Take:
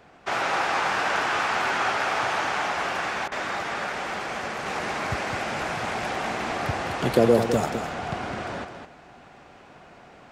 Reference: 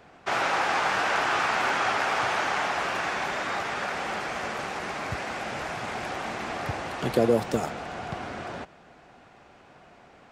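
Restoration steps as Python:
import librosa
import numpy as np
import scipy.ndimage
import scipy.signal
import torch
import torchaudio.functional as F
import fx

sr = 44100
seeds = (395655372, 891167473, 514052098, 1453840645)

y = fx.fix_interpolate(x, sr, at_s=(3.28,), length_ms=36.0)
y = fx.fix_echo_inverse(y, sr, delay_ms=209, level_db=-8.0)
y = fx.fix_level(y, sr, at_s=4.66, step_db=-3.5)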